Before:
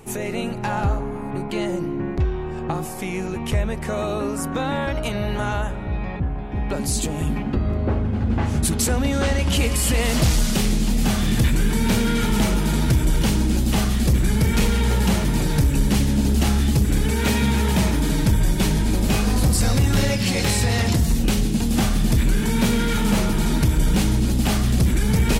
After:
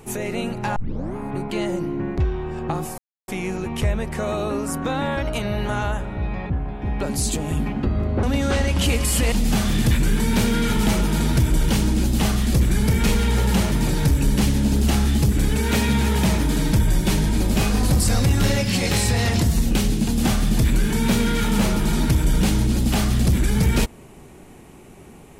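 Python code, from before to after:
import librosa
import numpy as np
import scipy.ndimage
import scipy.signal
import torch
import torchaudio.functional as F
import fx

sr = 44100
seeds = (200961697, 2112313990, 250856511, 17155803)

y = fx.edit(x, sr, fx.tape_start(start_s=0.76, length_s=0.39),
    fx.insert_silence(at_s=2.98, length_s=0.3),
    fx.cut(start_s=7.93, length_s=1.01),
    fx.cut(start_s=10.03, length_s=0.82), tone=tone)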